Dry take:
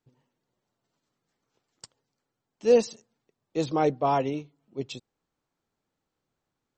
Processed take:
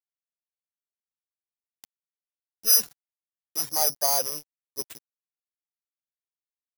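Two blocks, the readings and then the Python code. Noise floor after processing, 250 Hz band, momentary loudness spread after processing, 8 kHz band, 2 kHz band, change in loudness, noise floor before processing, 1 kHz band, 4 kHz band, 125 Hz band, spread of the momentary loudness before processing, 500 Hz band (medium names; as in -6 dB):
under -85 dBFS, -19.0 dB, 19 LU, +21.0 dB, -2.0 dB, +4.0 dB, -84 dBFS, -5.0 dB, +13.0 dB, -16.5 dB, 17 LU, -12.0 dB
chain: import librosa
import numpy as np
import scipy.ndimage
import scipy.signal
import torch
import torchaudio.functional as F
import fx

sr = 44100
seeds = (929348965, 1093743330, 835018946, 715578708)

y = (np.kron(x[::8], np.eye(8)[0]) * 8)[:len(x)]
y = fx.filter_sweep_highpass(y, sr, from_hz=2700.0, to_hz=300.0, start_s=1.74, end_s=5.0, q=2.7)
y = np.sign(y) * np.maximum(np.abs(y) - 10.0 ** (-24.5 / 20.0), 0.0)
y = F.gain(torch.from_numpy(y), -8.5).numpy()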